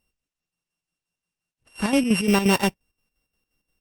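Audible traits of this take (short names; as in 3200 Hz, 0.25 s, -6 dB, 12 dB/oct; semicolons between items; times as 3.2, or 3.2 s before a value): a buzz of ramps at a fixed pitch in blocks of 16 samples; chopped level 5.7 Hz, depth 60%, duty 60%; Opus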